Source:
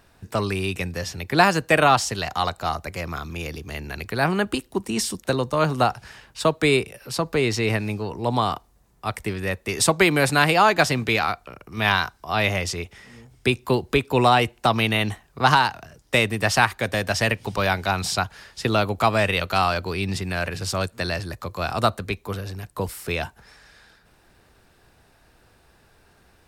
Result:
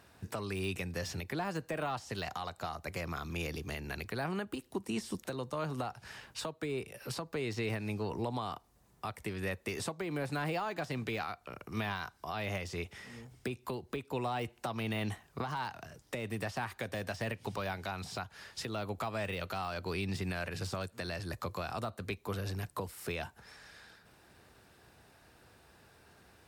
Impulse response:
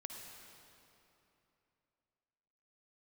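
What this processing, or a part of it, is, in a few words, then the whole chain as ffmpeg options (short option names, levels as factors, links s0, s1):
podcast mastering chain: -af "highpass=69,deesser=0.7,acompressor=threshold=0.0355:ratio=2.5,alimiter=limit=0.0708:level=0:latency=1:release=422,volume=0.75" -ar 44100 -c:a libmp3lame -b:a 96k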